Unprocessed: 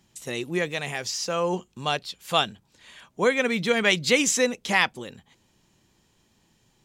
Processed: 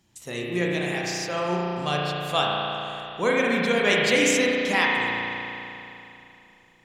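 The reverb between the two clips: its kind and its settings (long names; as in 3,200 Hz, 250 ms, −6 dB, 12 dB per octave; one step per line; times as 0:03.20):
spring reverb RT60 3 s, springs 34 ms, chirp 55 ms, DRR −3.5 dB
level −3 dB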